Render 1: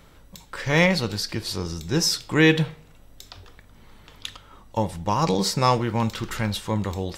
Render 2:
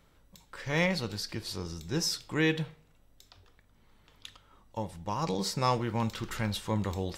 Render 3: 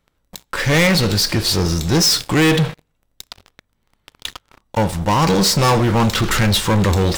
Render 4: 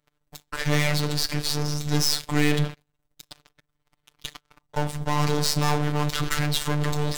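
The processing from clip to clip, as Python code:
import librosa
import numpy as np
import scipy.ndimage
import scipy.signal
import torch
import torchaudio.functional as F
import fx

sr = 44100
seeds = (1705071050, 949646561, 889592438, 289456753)

y1 = fx.rider(x, sr, range_db=10, speed_s=2.0)
y1 = F.gain(torch.from_numpy(y1), -8.5).numpy()
y2 = fx.leveller(y1, sr, passes=5)
y2 = F.gain(torch.from_numpy(y2), 4.5).numpy()
y3 = np.where(y2 < 0.0, 10.0 ** (-12.0 / 20.0) * y2, y2)
y3 = fx.robotise(y3, sr, hz=148.0)
y3 = F.gain(torch.from_numpy(y3), -3.0).numpy()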